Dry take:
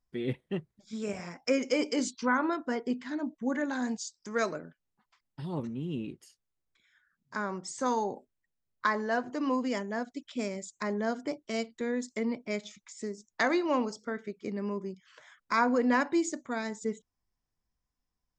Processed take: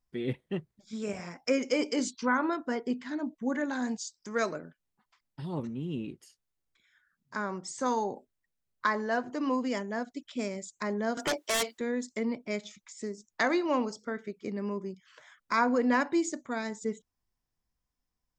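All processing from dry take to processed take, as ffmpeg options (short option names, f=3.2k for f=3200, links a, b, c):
-filter_complex "[0:a]asettb=1/sr,asplit=3[a][b][c];[a]atrim=end=11.174[d];[b]atrim=start=11.17:end=11.78,asetpts=PTS-STARTPTS,afade=t=in:d=0.004:c=qsin,afade=t=out:st=0.606:d=0.004:c=qsin,highpass=570,aeval=exprs='0.0596*sin(PI/2*4.47*val(0)/0.0596)':c=same[e];[c]atrim=start=11.776[f];[d][e]acrossfade=d=0.004:c1=hsin:c2=qsin[g];[g][f]acrossfade=d=0.004:c1=qsin:c2=hsin"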